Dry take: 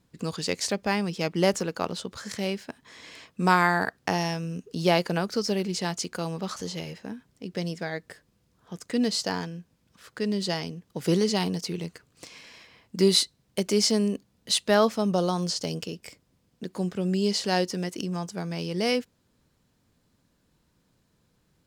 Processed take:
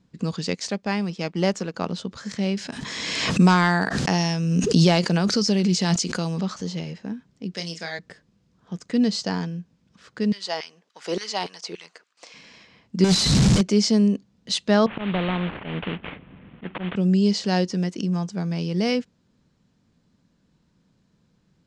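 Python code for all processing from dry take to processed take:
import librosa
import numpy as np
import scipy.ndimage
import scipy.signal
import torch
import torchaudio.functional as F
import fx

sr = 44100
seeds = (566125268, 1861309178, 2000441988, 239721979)

y = fx.chain(x, sr, fx.law_mismatch(coded='A'),
    fx.low_shelf(hz=240.0, db=-6.0), at=(0.55, 1.74))
y = fx.chain(y, sr, fx.high_shelf(hz=3600.0, db=9.5),
    fx.overload_stage(gain_db=12.0),
    fx.pre_swell(db_per_s=25.0), at=(2.57, 6.43))
y = fx.chain(y, sr, fx.highpass(hz=730.0, slope=6),
    fx.high_shelf(hz=2900.0, db=11.0),
    fx.doubler(ms=30.0, db=-7.5), at=(7.54, 7.99))
y = fx.chain(y, sr, fx.filter_lfo_highpass(shape='saw_down', hz=3.5, low_hz=450.0, high_hz=1900.0, q=1.6),
    fx.gate_hold(open_db=-56.0, close_db=-65.0, hold_ms=71.0, range_db=-21, attack_ms=1.4, release_ms=100.0), at=(10.32, 12.34))
y = fx.chain(y, sr, fx.clip_1bit(),
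    fx.bass_treble(bass_db=7, treble_db=7), at=(13.04, 13.61))
y = fx.chain(y, sr, fx.cvsd(bps=16000),
    fx.auto_swell(attack_ms=138.0),
    fx.spectral_comp(ratio=2.0), at=(14.86, 16.96))
y = scipy.signal.sosfilt(scipy.signal.butter(4, 7200.0, 'lowpass', fs=sr, output='sos'), y)
y = fx.peak_eq(y, sr, hz=190.0, db=8.0, octaves=1.0)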